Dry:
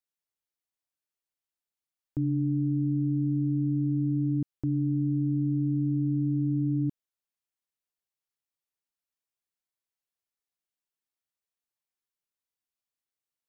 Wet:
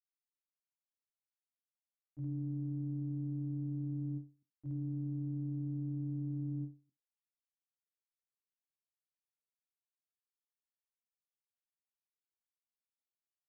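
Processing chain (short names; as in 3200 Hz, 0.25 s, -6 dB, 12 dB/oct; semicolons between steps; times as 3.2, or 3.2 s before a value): limiter -30.5 dBFS, peak gain reduction 10 dB; on a send: early reflections 22 ms -5.5 dB, 75 ms -8.5 dB; on the sum: expander -26 dBFS; notch 460 Hz, Q 14; ending taper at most 190 dB/s; gain +9.5 dB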